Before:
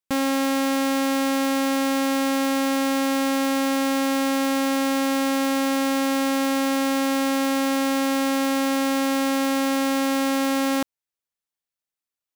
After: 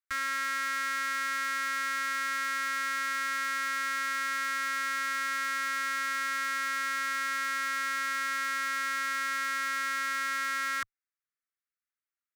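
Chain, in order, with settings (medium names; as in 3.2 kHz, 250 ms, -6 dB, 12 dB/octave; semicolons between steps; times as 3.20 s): elliptic band-stop 100–1200 Hz, stop band 40 dB; Chebyshev shaper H 2 -6 dB, 3 -17 dB, 4 -10 dB, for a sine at -12 dBFS; high-order bell 1.6 kHz +12.5 dB 1.2 oct; trim -6.5 dB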